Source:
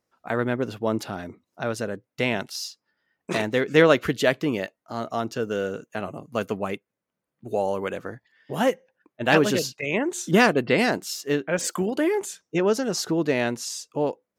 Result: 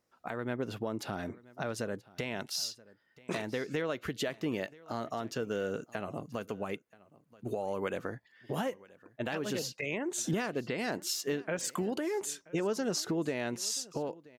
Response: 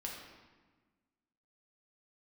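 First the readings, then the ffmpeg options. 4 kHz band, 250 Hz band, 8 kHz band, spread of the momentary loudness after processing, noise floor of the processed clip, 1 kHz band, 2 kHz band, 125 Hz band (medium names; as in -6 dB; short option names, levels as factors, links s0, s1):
-7.5 dB, -10.5 dB, -4.5 dB, 8 LU, -69 dBFS, -11.5 dB, -13.0 dB, -9.5 dB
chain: -filter_complex "[0:a]acompressor=threshold=0.0398:ratio=6,alimiter=limit=0.0708:level=0:latency=1:release=293,asplit=2[s0][s1];[s1]aecho=0:1:980:0.0794[s2];[s0][s2]amix=inputs=2:normalize=0"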